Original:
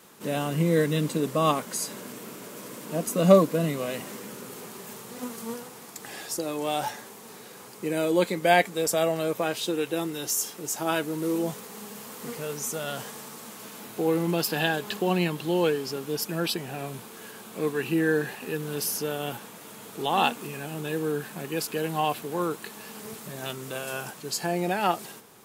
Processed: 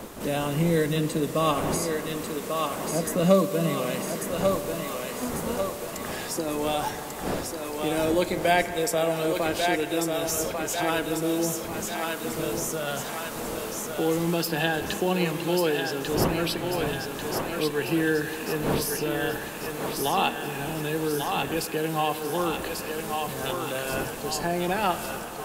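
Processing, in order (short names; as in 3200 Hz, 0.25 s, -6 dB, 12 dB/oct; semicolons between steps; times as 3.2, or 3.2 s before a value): wind noise 530 Hz -39 dBFS; on a send: thinning echo 1.143 s, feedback 53%, high-pass 470 Hz, level -4.5 dB; on the sum: spring tank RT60 2.9 s, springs 36/47 ms, chirp 65 ms, DRR 11.5 dB; three-band squash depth 40%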